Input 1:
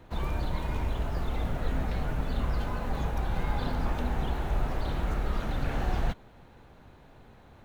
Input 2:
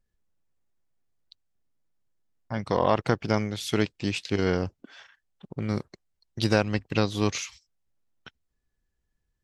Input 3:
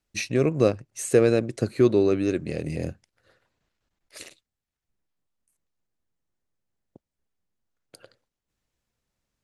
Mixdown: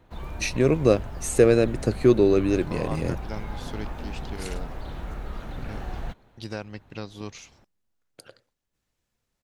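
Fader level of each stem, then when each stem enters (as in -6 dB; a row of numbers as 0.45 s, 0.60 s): -5.0 dB, -12.0 dB, +1.5 dB; 0.00 s, 0.00 s, 0.25 s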